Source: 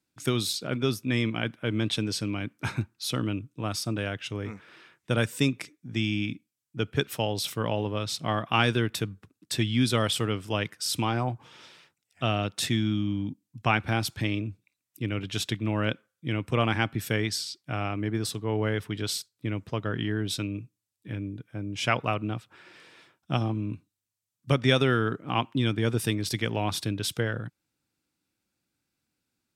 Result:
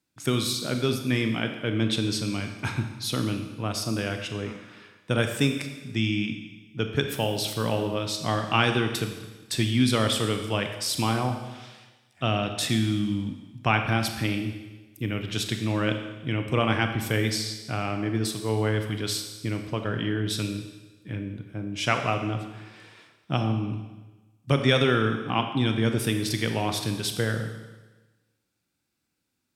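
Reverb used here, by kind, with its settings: Schroeder reverb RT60 1.2 s, combs from 28 ms, DRR 5.5 dB; gain +1 dB

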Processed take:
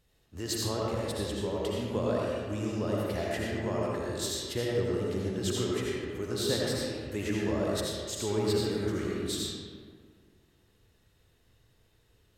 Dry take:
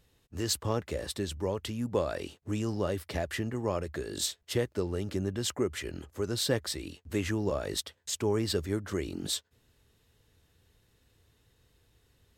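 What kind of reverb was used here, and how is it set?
digital reverb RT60 1.9 s, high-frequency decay 0.55×, pre-delay 40 ms, DRR -4.5 dB; gain -4.5 dB

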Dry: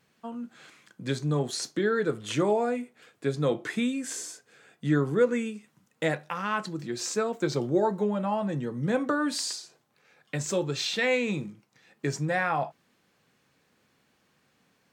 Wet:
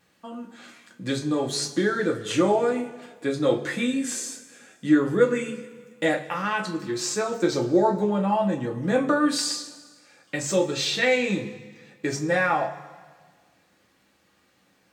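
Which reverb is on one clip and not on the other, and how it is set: two-slope reverb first 0.22 s, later 1.6 s, from -18 dB, DRR 0 dB; gain +1.5 dB

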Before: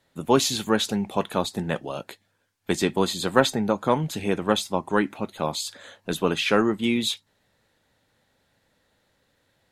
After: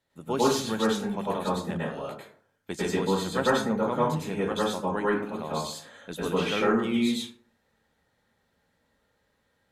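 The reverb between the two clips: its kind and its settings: plate-style reverb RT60 0.54 s, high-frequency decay 0.45×, pre-delay 90 ms, DRR -7 dB; gain -11 dB

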